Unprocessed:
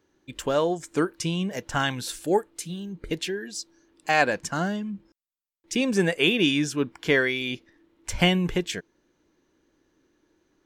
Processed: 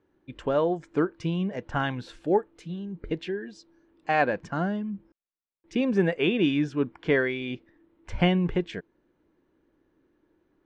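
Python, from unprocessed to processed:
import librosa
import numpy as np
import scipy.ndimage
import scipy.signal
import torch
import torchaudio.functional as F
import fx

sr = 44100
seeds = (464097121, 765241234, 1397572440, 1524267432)

y = scipy.signal.sosfilt(scipy.signal.butter(2, 3500.0, 'lowpass', fs=sr, output='sos'), x)
y = fx.high_shelf(y, sr, hz=2100.0, db=-10.0)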